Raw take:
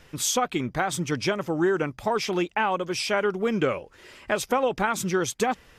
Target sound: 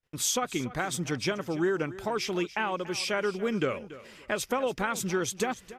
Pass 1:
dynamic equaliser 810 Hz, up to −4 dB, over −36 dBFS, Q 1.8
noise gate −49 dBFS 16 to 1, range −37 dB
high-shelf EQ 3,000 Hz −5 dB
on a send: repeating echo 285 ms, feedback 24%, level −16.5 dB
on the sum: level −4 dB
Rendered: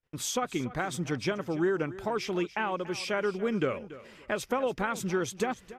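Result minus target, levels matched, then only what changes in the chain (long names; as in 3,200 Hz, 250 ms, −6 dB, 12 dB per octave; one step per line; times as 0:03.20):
8,000 Hz band −5.0 dB
change: high-shelf EQ 3,000 Hz +2 dB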